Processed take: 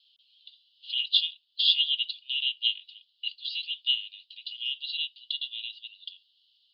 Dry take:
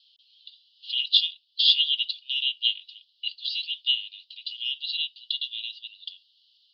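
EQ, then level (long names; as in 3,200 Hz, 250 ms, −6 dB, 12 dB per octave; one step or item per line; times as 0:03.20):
low-pass filter 3,400 Hz 12 dB per octave
0.0 dB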